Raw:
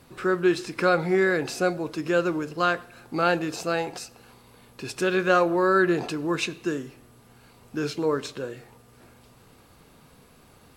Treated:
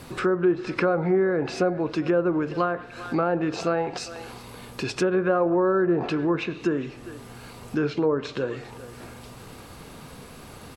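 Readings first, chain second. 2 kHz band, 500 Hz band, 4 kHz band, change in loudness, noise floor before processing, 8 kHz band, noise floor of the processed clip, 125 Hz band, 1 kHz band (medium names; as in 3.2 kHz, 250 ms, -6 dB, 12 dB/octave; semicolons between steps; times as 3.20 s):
-5.0 dB, +1.0 dB, -3.0 dB, 0.0 dB, -55 dBFS, -3.5 dB, -44 dBFS, +3.0 dB, -2.0 dB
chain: in parallel at -2 dB: peak limiter -16 dBFS, peak gain reduction 8.5 dB; on the sum: speakerphone echo 400 ms, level -21 dB; compression 1.5:1, threshold -40 dBFS, peak gain reduction 10 dB; low-pass that closes with the level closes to 1 kHz, closed at -23.5 dBFS; trim +6 dB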